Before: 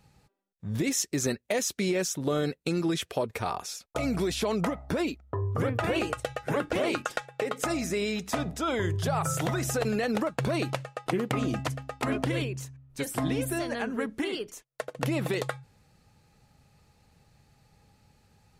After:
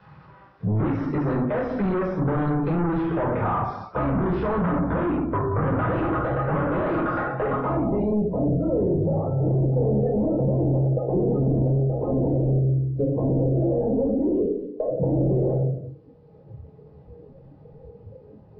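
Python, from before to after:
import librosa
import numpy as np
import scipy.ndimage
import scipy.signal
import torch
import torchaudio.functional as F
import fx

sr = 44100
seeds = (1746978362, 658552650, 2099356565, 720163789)

p1 = x + 0.5 * 10.0 ** (-32.5 / 20.0) * np.diff(np.sign(x), prepend=np.sign(x[:1]))
p2 = fx.highpass(p1, sr, hz=96.0, slope=6)
p3 = fx.room_shoebox(p2, sr, seeds[0], volume_m3=640.0, walls='furnished', distance_m=4.9)
p4 = np.clip(p3, -10.0 ** (-28.5 / 20.0), 10.0 ** (-28.5 / 20.0))
p5 = scipy.signal.sosfilt(scipy.signal.ellip(4, 1.0, 40, 5300.0, 'lowpass', fs=sr, output='sos'), p4)
p6 = fx.low_shelf(p5, sr, hz=500.0, db=10.0)
p7 = fx.filter_sweep_lowpass(p6, sr, from_hz=1300.0, to_hz=520.0, start_s=7.48, end_s=8.29, q=2.1)
p8 = fx.peak_eq(p7, sr, hz=2800.0, db=-14.0, octaves=0.48, at=(13.67, 14.33))
p9 = p8 + fx.echo_single(p8, sr, ms=181, db=-14.5, dry=0)
p10 = fx.noise_reduce_blind(p9, sr, reduce_db=16)
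y = fx.band_squash(p10, sr, depth_pct=40)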